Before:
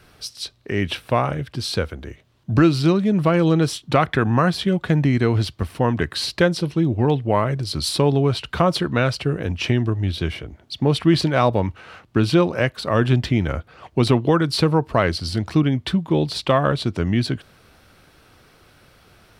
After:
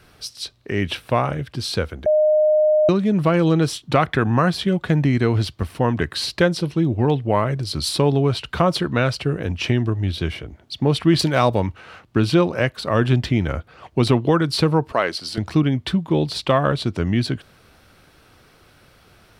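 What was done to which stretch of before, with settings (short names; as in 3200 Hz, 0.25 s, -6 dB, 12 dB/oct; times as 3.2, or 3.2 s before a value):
2.06–2.89 bleep 613 Hz -12.5 dBFS
11.19–11.66 high shelf 5500 Hz +10 dB
14.92–15.38 Bessel high-pass 400 Hz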